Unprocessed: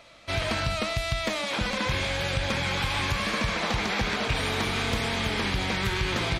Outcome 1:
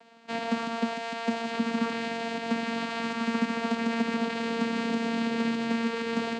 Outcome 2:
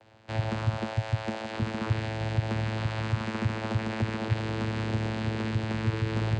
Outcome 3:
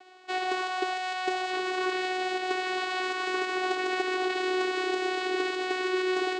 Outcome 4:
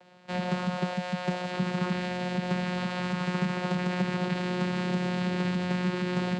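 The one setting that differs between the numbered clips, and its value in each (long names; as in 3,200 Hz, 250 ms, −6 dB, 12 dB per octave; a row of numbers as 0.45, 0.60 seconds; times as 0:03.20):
channel vocoder, frequency: 230, 110, 370, 180 Hertz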